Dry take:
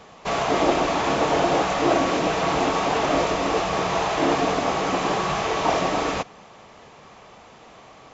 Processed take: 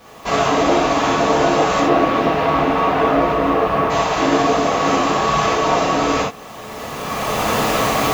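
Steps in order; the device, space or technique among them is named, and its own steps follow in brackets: 1.80–3.89 s: low-pass 3.4 kHz -> 2 kHz 12 dB/octave; cheap recorder with automatic gain (white noise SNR 37 dB; recorder AGC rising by 18 dB/s); gated-style reverb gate 100 ms flat, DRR -5 dB; trim -2 dB

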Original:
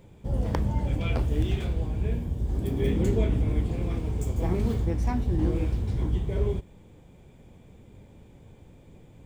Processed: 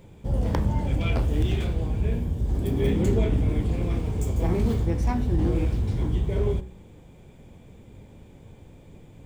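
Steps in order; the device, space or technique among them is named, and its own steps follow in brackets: de-hum 62.65 Hz, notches 32; parallel distortion (in parallel at -6 dB: hard clipper -23 dBFS, distortion -13 dB)

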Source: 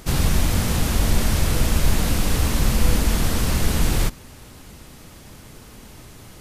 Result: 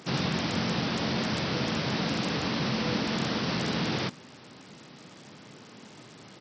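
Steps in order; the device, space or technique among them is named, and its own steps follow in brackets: Bluetooth headset (high-pass 140 Hz 24 dB/octave; resampled via 16 kHz; trim -3 dB; SBC 64 kbps 44.1 kHz)

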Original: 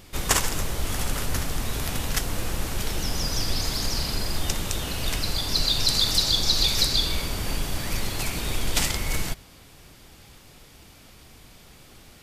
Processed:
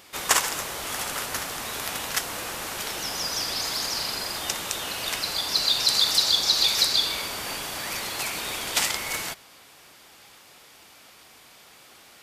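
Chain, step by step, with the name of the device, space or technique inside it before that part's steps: filter by subtraction (in parallel: low-pass 1 kHz 12 dB/octave + polarity flip); on the sum: trim +1 dB

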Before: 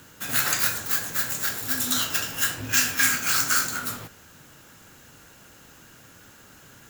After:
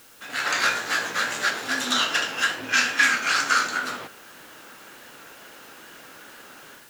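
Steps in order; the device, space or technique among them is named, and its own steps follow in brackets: dictaphone (band-pass 340–3900 Hz; level rider gain up to 12 dB; wow and flutter; white noise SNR 25 dB); 0.53–1.50 s: doubling 17 ms -4.5 dB; trim -4 dB

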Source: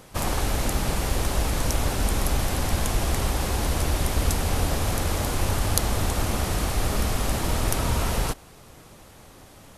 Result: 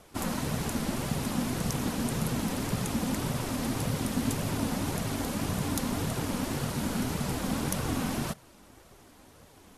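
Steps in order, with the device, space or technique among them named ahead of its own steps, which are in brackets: alien voice (ring modulator 190 Hz; flange 1.8 Hz, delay 1.4 ms, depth 2.8 ms, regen -33%)

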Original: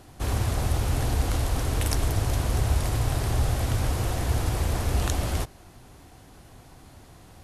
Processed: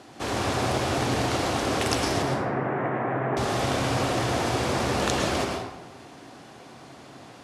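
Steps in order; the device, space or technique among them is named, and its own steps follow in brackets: 2.22–3.37 s: elliptic band-pass 140–1900 Hz, stop band 40 dB; supermarket ceiling speaker (band-pass 220–6600 Hz; reverberation RT60 0.95 s, pre-delay 101 ms, DRR 0.5 dB); trim +5 dB

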